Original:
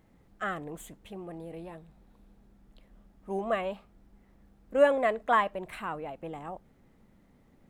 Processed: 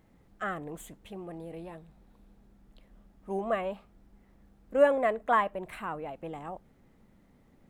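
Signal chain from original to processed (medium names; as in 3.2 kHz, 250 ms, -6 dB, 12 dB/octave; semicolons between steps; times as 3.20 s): dynamic bell 4.5 kHz, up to -6 dB, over -49 dBFS, Q 0.74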